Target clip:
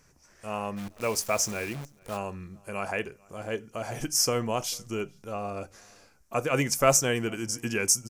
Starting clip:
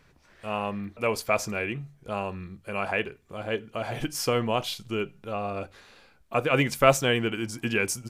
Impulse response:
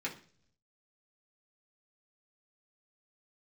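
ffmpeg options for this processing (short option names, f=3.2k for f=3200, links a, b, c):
-filter_complex "[0:a]highshelf=f=4.7k:t=q:w=3:g=7.5,asplit=3[a][b][c];[a]afade=t=out:st=0.76:d=0.02[d];[b]acrusher=bits=7:dc=4:mix=0:aa=0.000001,afade=t=in:st=0.76:d=0.02,afade=t=out:st=2.16:d=0.02[e];[c]afade=t=in:st=2.16:d=0.02[f];[d][e][f]amix=inputs=3:normalize=0,asplit=2[g][h];[h]adelay=443.1,volume=-27dB,highshelf=f=4k:g=-9.97[i];[g][i]amix=inputs=2:normalize=0,volume=-2.5dB"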